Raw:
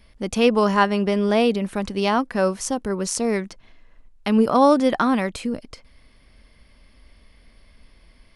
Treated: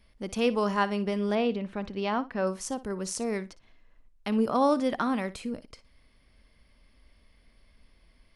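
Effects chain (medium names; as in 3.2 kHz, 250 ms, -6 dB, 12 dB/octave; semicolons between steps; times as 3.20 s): 1.35–2.47 s: low-pass 3.7 kHz 12 dB/octave; flutter echo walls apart 10 m, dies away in 0.21 s; trim -8.5 dB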